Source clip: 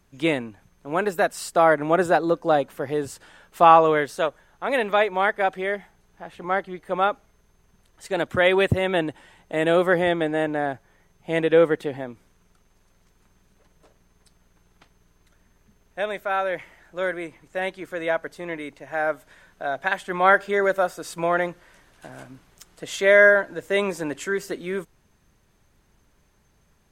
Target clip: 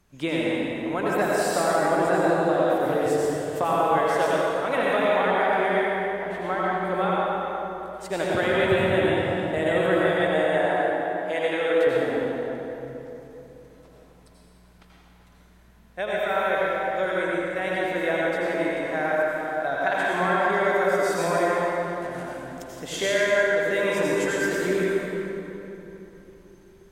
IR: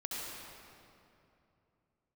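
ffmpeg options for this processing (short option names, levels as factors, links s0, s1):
-filter_complex "[0:a]asettb=1/sr,asplit=3[s0][s1][s2];[s0]atrim=end=10.074[s3];[s1]atrim=start=10.07:end=11.87,asetpts=PTS-STARTPTS,afade=t=in:d=0.004:c=qsin,afade=t=out:st=1.796:d=0.004:c=qsin,highpass=470[s4];[s2]atrim=start=11.866[s5];[s3][s4]acrossfade=d=0.004:c1=hsin:c2=qsin[s6];[s6][s5]acrossfade=d=0.004:c1=qsin:c2=hsin,acompressor=threshold=0.0794:ratio=6[s7];[1:a]atrim=start_sample=2205,asetrate=35280,aresample=44100[s8];[s7][s8]afir=irnorm=-1:irlink=0,volume=1.19"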